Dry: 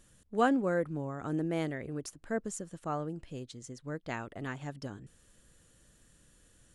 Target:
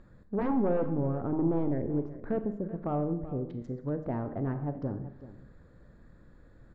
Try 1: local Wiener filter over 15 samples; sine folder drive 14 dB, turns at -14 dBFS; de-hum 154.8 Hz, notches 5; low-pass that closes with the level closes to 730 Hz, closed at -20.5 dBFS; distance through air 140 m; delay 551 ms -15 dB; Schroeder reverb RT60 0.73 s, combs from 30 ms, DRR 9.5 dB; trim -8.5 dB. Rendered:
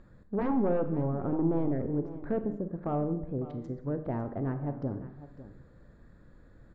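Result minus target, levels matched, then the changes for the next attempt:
echo 169 ms late
change: delay 382 ms -15 dB

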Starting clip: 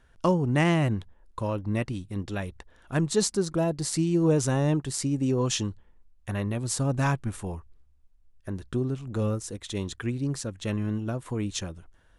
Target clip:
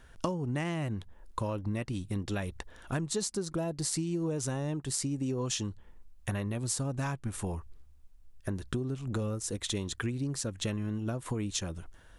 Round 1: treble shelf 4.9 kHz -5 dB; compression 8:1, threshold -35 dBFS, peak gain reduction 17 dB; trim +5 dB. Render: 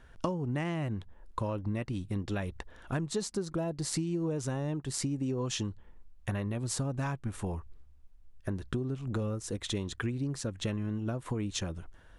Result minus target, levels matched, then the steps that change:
8 kHz band -3.5 dB
change: treble shelf 4.9 kHz +4.5 dB

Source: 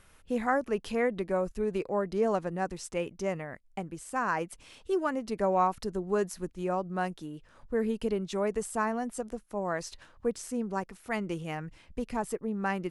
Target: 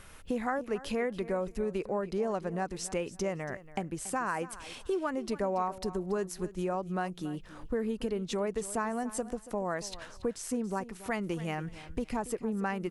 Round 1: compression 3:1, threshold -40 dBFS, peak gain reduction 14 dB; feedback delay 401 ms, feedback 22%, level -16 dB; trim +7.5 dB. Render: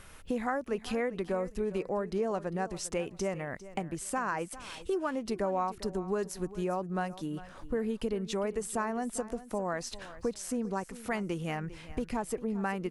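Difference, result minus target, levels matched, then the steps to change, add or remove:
echo 120 ms late
change: feedback delay 281 ms, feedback 22%, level -16 dB

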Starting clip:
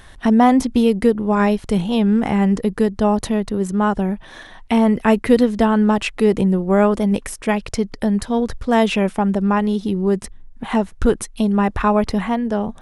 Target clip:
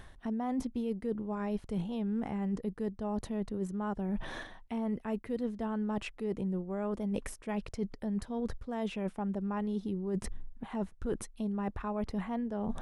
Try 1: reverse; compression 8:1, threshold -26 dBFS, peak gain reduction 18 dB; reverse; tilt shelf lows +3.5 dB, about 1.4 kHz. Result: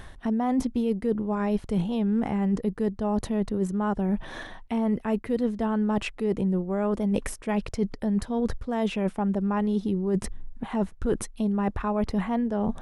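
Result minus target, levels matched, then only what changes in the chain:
compression: peak gain reduction -9 dB
change: compression 8:1, threshold -36 dBFS, peak gain reduction 26.5 dB

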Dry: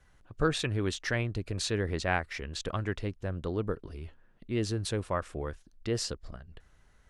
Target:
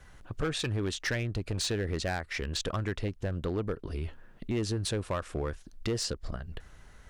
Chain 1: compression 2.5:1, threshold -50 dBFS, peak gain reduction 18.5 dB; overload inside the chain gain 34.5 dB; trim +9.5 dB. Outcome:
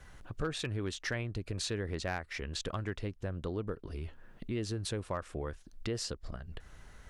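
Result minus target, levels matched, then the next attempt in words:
compression: peak gain reduction +5.5 dB
compression 2.5:1, threshold -41 dBFS, peak gain reduction 13 dB; overload inside the chain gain 34.5 dB; trim +9.5 dB

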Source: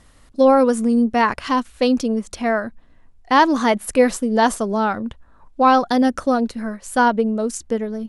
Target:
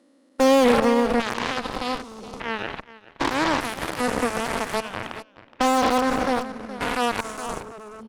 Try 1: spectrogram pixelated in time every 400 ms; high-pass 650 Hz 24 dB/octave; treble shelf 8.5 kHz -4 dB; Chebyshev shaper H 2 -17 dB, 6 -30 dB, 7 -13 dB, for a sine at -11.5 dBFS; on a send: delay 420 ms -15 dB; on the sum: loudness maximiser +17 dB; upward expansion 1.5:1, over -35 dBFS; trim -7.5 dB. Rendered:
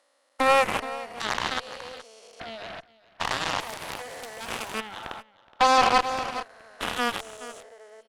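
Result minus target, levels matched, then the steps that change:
250 Hz band -11.5 dB
change: high-pass 250 Hz 24 dB/octave

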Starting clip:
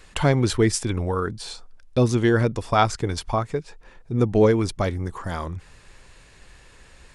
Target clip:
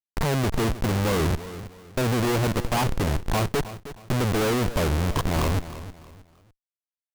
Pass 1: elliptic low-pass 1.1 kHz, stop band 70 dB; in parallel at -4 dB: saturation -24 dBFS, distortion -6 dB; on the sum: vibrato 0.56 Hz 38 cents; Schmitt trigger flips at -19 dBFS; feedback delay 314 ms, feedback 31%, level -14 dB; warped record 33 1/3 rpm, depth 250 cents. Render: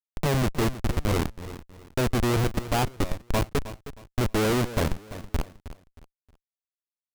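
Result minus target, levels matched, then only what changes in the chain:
Schmitt trigger: distortion +4 dB
change: Schmitt trigger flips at -29.5 dBFS

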